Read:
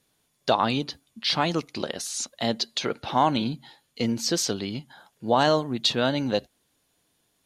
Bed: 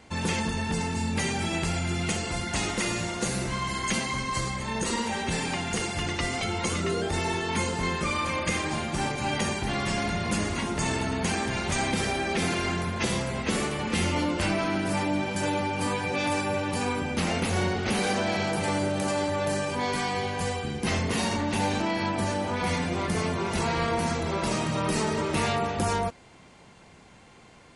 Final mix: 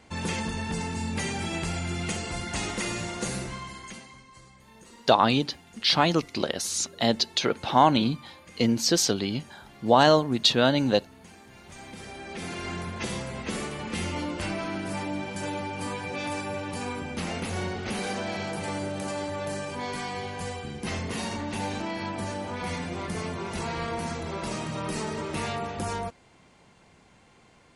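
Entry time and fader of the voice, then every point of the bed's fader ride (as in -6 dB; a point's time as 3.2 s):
4.60 s, +2.5 dB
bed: 3.35 s -2.5 dB
4.29 s -22.5 dB
11.43 s -22.5 dB
12.76 s -5 dB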